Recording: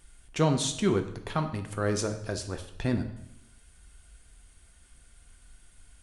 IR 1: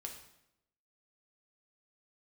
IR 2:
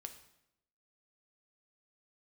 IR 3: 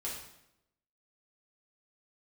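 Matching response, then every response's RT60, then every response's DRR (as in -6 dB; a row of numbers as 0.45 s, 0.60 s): 2; 0.80 s, 0.80 s, 0.80 s; 1.5 dB, 6.0 dB, -6.0 dB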